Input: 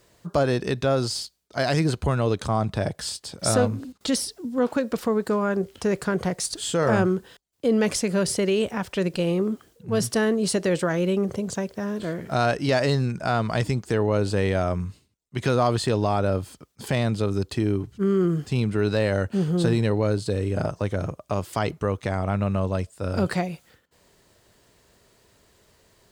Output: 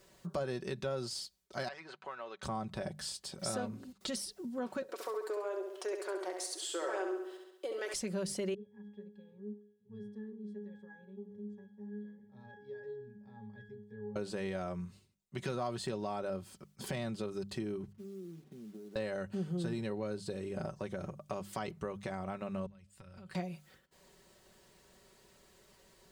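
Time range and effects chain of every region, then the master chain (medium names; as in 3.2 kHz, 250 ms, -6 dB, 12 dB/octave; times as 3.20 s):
1.68–2.43 s: companding laws mixed up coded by A + high-pass 1 kHz + tape spacing loss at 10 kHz 30 dB
4.82–7.94 s: elliptic high-pass 320 Hz + flutter echo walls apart 11.6 m, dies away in 0.67 s
8.54–14.16 s: treble shelf 3.8 kHz +6 dB + flange 1.8 Hz, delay 4.3 ms, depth 7.8 ms, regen -89% + pitch-class resonator G#, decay 0.5 s
17.92–18.96 s: compression 10:1, threshold -28 dBFS + ladder band-pass 300 Hz, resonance 35% + companded quantiser 6-bit
22.66–23.35 s: compression 10:1, threshold -36 dBFS + FFT filter 100 Hz 0 dB, 360 Hz -15 dB, 2.7 kHz -3 dB, 5.5 kHz -8 dB
whole clip: hum notches 50/100/150/200 Hz; comb 5.3 ms, depth 58%; compression 2:1, threshold -38 dBFS; trim -5 dB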